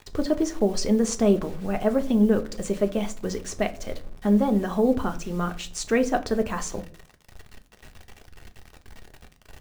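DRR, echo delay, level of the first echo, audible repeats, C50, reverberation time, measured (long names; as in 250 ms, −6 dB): 7.0 dB, no echo audible, no echo audible, no echo audible, 17.5 dB, 0.50 s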